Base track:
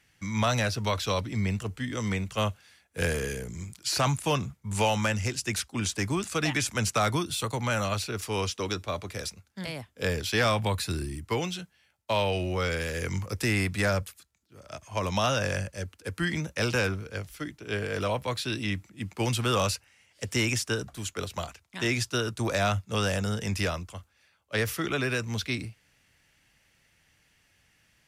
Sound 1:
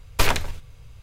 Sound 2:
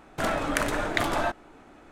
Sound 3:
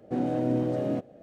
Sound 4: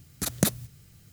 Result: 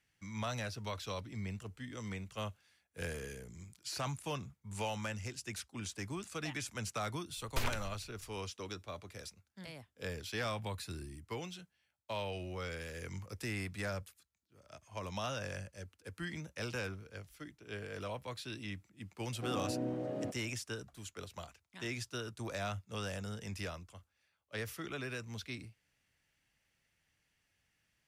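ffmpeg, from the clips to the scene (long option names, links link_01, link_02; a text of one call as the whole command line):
ffmpeg -i bed.wav -i cue0.wav -i cue1.wav -i cue2.wav -filter_complex "[0:a]volume=-13dB[link_01];[3:a]equalizer=frequency=1300:width_type=o:width=2.7:gain=3.5[link_02];[1:a]atrim=end=1.02,asetpts=PTS-STARTPTS,volume=-16dB,afade=type=in:duration=0.004:curve=hsin,afade=type=out:start_time=1.016:duration=0.004:curve=hsin,adelay=7370[link_03];[link_02]atrim=end=1.22,asetpts=PTS-STARTPTS,volume=-12dB,afade=type=in:duration=0.004:curve=hsin,afade=type=out:start_time=1.216:duration=0.004:curve=hsin,adelay=19310[link_04];[link_01][link_03][link_04]amix=inputs=3:normalize=0" out.wav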